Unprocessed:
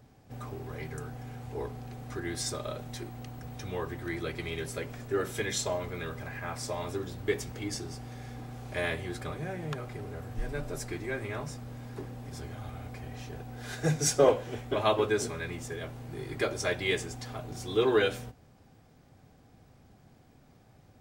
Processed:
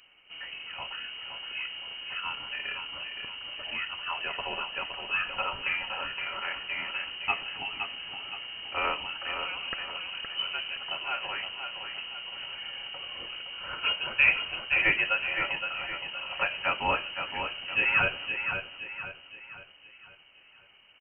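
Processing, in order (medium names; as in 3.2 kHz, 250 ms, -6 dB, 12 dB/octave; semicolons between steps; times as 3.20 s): tilt shelf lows -5 dB; on a send: feedback delay 517 ms, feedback 43%, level -7 dB; on the sum: frequency inversion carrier 3 kHz; trim +2 dB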